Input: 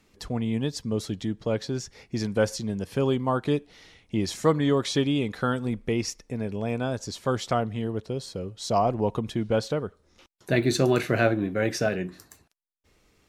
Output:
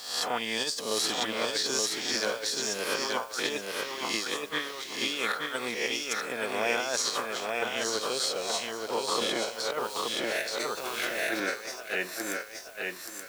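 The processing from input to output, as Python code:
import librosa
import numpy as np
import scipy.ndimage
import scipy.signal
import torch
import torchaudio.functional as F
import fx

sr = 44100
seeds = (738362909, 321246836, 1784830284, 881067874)

y = fx.spec_swells(x, sr, rise_s=0.66)
y = scipy.signal.sosfilt(scipy.signal.butter(2, 850.0, 'highpass', fs=sr, output='sos'), y)
y = fx.over_compress(y, sr, threshold_db=-37.0, ratio=-0.5)
y = fx.dmg_noise_colour(y, sr, seeds[0], colour='white', level_db=-60.0)
y = fx.echo_feedback(y, sr, ms=876, feedback_pct=23, wet_db=-3.5)
y = fx.band_squash(y, sr, depth_pct=100, at=(9.21, 11.4))
y = y * 10.0 ** (4.5 / 20.0)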